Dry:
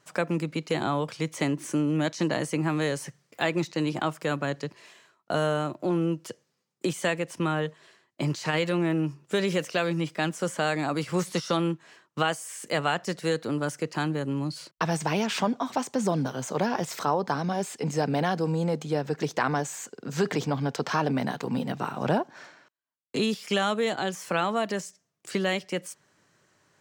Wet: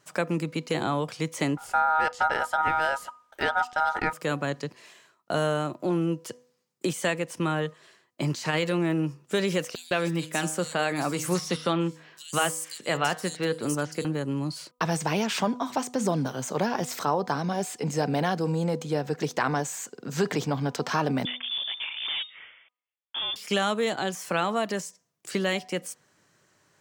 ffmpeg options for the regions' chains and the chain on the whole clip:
ffmpeg -i in.wav -filter_complex "[0:a]asettb=1/sr,asplit=3[link_01][link_02][link_03];[link_01]atrim=end=1.574[link_04];[link_02]atrim=start=1.57:end=4.13,asetpts=PTS-STARTPTS,afade=type=in:duration=0.004:curve=qsin,afade=type=out:start_time=2.556:duration=0.004:curve=qsin,tiltshelf=frequency=1300:gain=5.5,aeval=exprs='val(0)*sin(2*PI*1100*n/s)':channel_layout=same[link_05];[link_03]atrim=start=4.126[link_06];[link_04][link_05]acrossfade=duration=0.004:curve1=hsin:curve2=qsin[link_07];[link_07][link_06]acrossfade=duration=0.004:curve1=qsin:curve2=hsin,asettb=1/sr,asplit=3[link_08][link_09][link_10];[link_08]atrim=end=9.754[link_11];[link_09]atrim=start=9.75:end=14.05,asetpts=PTS-STARTPTS,afade=type=in:duration=0.004:curve=qsin,afade=type=out:start_time=4.296:duration=0.004:curve=qsin,highshelf=frequency=4100:gain=5.5,bandreject=frequency=156.1:width_type=h:width=4,bandreject=frequency=312.2:width_type=h:width=4,bandreject=frequency=468.3:width_type=h:width=4,bandreject=frequency=624.4:width_type=h:width=4,bandreject=frequency=780.5:width_type=h:width=4,bandreject=frequency=936.6:width_type=h:width=4,bandreject=frequency=1092.7:width_type=h:width=4,bandreject=frequency=1248.8:width_type=h:width=4,bandreject=frequency=1404.9:width_type=h:width=4,bandreject=frequency=1561:width_type=h:width=4,bandreject=frequency=1717.1:width_type=h:width=4,bandreject=frequency=1873.2:width_type=h:width=4,bandreject=frequency=2029.3:width_type=h:width=4,bandreject=frequency=2185.4:width_type=h:width=4,bandreject=frequency=2341.5:width_type=h:width=4,bandreject=frequency=2497.6:width_type=h:width=4,bandreject=frequency=2653.7:width_type=h:width=4,bandreject=frequency=2809.8:width_type=h:width=4,bandreject=frequency=2965.9:width_type=h:width=4,bandreject=frequency=3122:width_type=h:width=4,bandreject=frequency=3278.1:width_type=h:width=4,bandreject=frequency=3434.2:width_type=h:width=4,bandreject=frequency=3590.3:width_type=h:width=4,bandreject=frequency=3746.4:width_type=h:width=4,bandreject=frequency=3902.5:width_type=h:width=4,bandreject=frequency=4058.6:width_type=h:width=4,bandreject=frequency=4214.7:width_type=h:width=4,acrossover=split=4300[link_12][link_13];[link_12]adelay=160[link_14];[link_14][link_13]amix=inputs=2:normalize=0,atrim=end_sample=189630[link_15];[link_10]atrim=start=14.046[link_16];[link_11][link_15]acrossfade=duration=0.004:curve1=hsin:curve2=qsin[link_17];[link_17][link_16]acrossfade=duration=0.004:curve1=qsin:curve2=hsin,asettb=1/sr,asplit=3[link_18][link_19][link_20];[link_18]atrim=end=21.254[link_21];[link_19]atrim=start=21.25:end=23.36,asetpts=PTS-STARTPTS,afade=type=in:duration=0.004:curve=qsin,afade=type=out:start_time=2.106:duration=0.004:curve=qsin,highpass=frequency=120:poles=1,asoftclip=type=hard:threshold=-28.5dB,lowpass=frequency=3100:width_type=q:width=0.5098,lowpass=frequency=3100:width_type=q:width=0.6013,lowpass=frequency=3100:width_type=q:width=0.9,lowpass=frequency=3100:width_type=q:width=2.563,afreqshift=-3700[link_22];[link_20]atrim=start=23.356[link_23];[link_21][link_22]acrossfade=duration=0.004:curve1=hsin:curve2=qsin[link_24];[link_24][link_23]acrossfade=duration=0.004:curve1=qsin:curve2=hsin,highshelf=frequency=7900:gain=5,bandreject=frequency=247.2:width_type=h:width=4,bandreject=frequency=494.4:width_type=h:width=4,bandreject=frequency=741.6:width_type=h:width=4,bandreject=frequency=988.8:width_type=h:width=4,bandreject=frequency=1236:width_type=h:width=4" out.wav

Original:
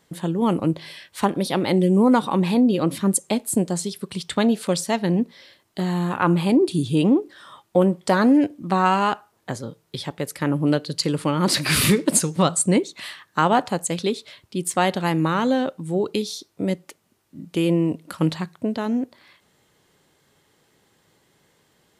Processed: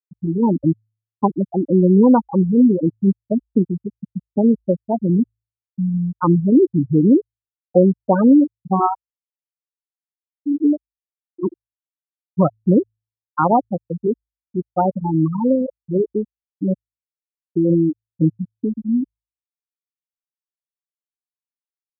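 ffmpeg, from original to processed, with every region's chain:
ffmpeg -i in.wav -filter_complex "[0:a]asettb=1/sr,asplit=3[link_01][link_02][link_03];[link_01]atrim=end=8.794[link_04];[link_02]atrim=start=8.79:end=12.32,asetpts=PTS-STARTPTS,afade=type=in:duration=0.004:curve=qsin,afade=type=out:start_time=3.526:duration=0.004:curve=qsin,aecho=1:1:2.9:0.57,atrim=end_sample=155673,aeval=exprs='val(0)*pow(10,-26*(0.5-0.5*cos(2*PI*1.1*n/s))/20)':channel_layout=same[link_05];[link_03]atrim=start=12.316[link_06];[link_04][link_05]acrossfade=duration=0.004:curve1=hsin:curve2=qsin[link_07];[link_07][link_06]acrossfade=duration=0.004:curve1=qsin:curve2=hsin,highshelf=frequency=2900:gain=-8.5,afftfilt=real='re*gte(hypot(re,im),0.447)':imag='im*gte(hypot(re,im),0.447)':win_size=1024:overlap=0.75,bandreject=frequency=54.41:width_type=h:width=4,bandreject=frequency=108.82:width_type=h:width=4,volume=5dB" out.wav

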